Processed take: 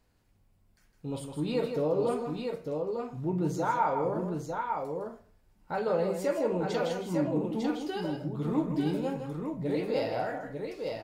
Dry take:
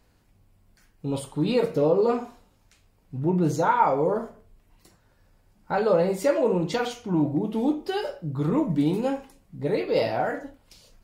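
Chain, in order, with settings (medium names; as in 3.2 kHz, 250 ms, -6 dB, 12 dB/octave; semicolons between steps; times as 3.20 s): multi-tap echo 159/900 ms -7.5/-4.5 dB; trim -7.5 dB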